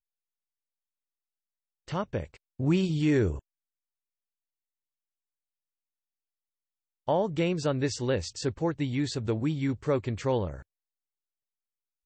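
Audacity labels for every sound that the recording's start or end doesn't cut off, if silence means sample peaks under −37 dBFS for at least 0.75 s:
1.880000	3.390000	sound
7.080000	10.600000	sound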